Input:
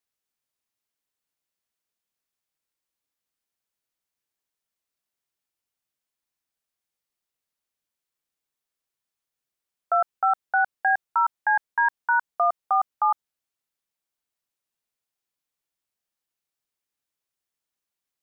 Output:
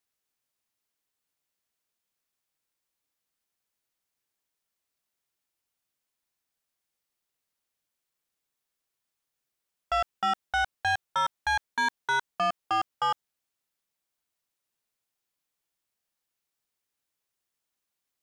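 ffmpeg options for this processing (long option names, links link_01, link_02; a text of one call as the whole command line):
ffmpeg -i in.wav -af "asoftclip=type=tanh:threshold=-24.5dB,volume=2dB" out.wav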